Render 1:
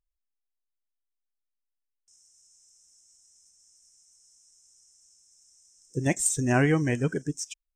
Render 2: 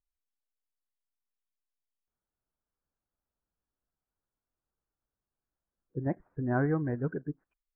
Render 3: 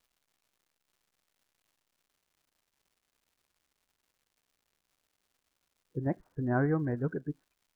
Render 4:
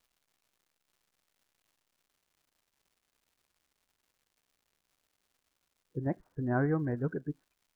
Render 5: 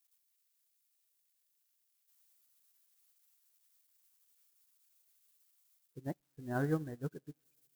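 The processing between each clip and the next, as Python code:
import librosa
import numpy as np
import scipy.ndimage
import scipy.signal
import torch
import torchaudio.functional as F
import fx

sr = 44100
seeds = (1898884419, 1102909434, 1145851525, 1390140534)

y1 = scipy.signal.sosfilt(scipy.signal.butter(8, 1600.0, 'lowpass', fs=sr, output='sos'), x)
y1 = y1 * librosa.db_to_amplitude(-5.5)
y2 = fx.dmg_crackle(y1, sr, seeds[0], per_s=300.0, level_db=-61.0)
y3 = fx.rider(y2, sr, range_db=4, speed_s=2.0)
y3 = y3 * librosa.db_to_amplitude(-2.0)
y4 = y3 + 0.5 * 10.0 ** (-36.0 / 20.0) * np.diff(np.sign(y3), prepend=np.sign(y3[:1]))
y4 = fx.rev_double_slope(y4, sr, seeds[1], early_s=0.36, late_s=4.9, knee_db=-18, drr_db=13.5)
y4 = fx.upward_expand(y4, sr, threshold_db=-45.0, expansion=2.5)
y4 = y4 * librosa.db_to_amplitude(-2.5)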